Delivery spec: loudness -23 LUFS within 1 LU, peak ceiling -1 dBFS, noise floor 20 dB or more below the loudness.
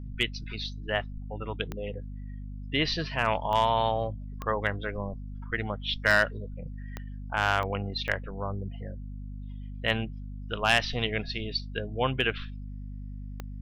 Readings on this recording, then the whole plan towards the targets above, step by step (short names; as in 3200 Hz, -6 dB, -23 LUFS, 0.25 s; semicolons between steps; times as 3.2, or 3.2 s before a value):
clicks 8; hum 50 Hz; harmonics up to 250 Hz; hum level -36 dBFS; loudness -29.5 LUFS; peak -12.0 dBFS; loudness target -23.0 LUFS
-> de-click; de-hum 50 Hz, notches 5; gain +6.5 dB